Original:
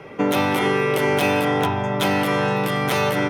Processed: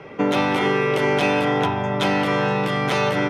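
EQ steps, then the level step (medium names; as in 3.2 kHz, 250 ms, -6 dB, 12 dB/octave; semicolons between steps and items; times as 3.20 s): low-pass 6.3 kHz 12 dB/octave; hum notches 50/100 Hz; 0.0 dB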